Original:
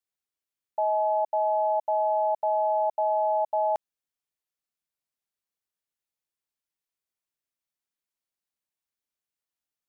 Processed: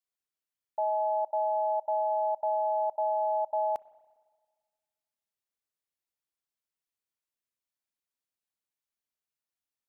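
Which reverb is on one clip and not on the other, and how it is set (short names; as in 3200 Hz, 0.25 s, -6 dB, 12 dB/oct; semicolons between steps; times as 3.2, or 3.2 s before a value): spring tank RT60 1.6 s, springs 31/57 ms, chirp 75 ms, DRR 18.5 dB; gain -3.5 dB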